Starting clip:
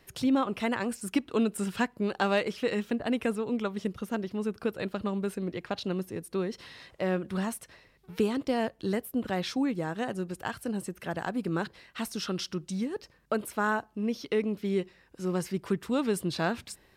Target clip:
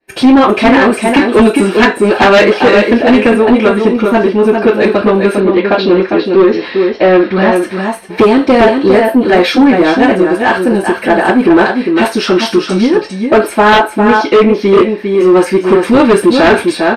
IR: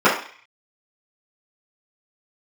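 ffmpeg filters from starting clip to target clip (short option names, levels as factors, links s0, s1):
-filter_complex "[0:a]aecho=1:1:403:0.473,agate=range=0.0224:threshold=0.00501:ratio=3:detection=peak,lowshelf=f=280:g=9[s0];[1:a]atrim=start_sample=2205,asetrate=74970,aresample=44100[s1];[s0][s1]afir=irnorm=-1:irlink=0,acontrast=28,asettb=1/sr,asplit=3[s2][s3][s4];[s2]atrim=end=5.404[s5];[s3]atrim=start=5.4:end=7.56,asetpts=PTS-STARTPTS,afade=t=in:d=0.004:c=qsin,afade=t=out:st=2.156:d=0.004:c=qsin,lowpass=f=5100:w=0.5412,lowpass=f=5100:w=1.3066[s6];[s4]atrim=start=7.556[s7];[s5][s6]acrossfade=d=0.004:c1=hsin:c2=qsin[s8];[s8][s7]acrossfade=d=0.004:c1=qsin:c2=hsin,volume=0.841"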